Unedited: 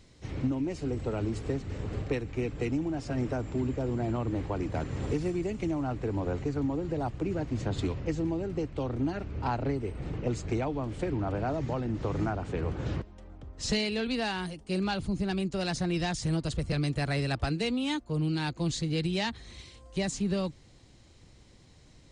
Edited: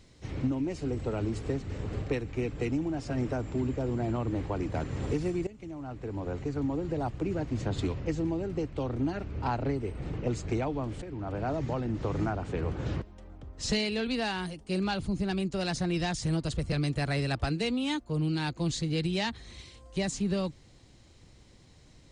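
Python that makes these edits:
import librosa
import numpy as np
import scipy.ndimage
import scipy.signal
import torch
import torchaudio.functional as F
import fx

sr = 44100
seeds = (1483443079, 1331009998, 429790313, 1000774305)

y = fx.edit(x, sr, fx.fade_in_from(start_s=5.47, length_s=1.3, floor_db=-16.5),
    fx.fade_in_from(start_s=11.02, length_s=0.5, floor_db=-12.5), tone=tone)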